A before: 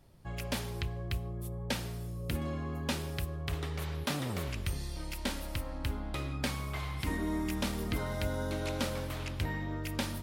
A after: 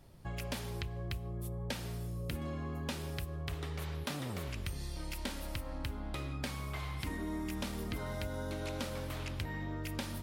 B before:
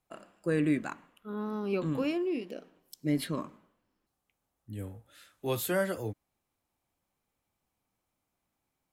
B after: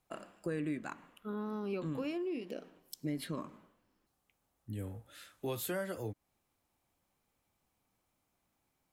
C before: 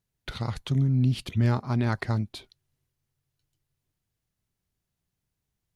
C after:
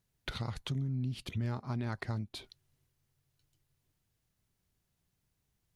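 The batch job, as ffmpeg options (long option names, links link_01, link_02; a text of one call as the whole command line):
ffmpeg -i in.wav -af "acompressor=threshold=-40dB:ratio=3,volume=2.5dB" out.wav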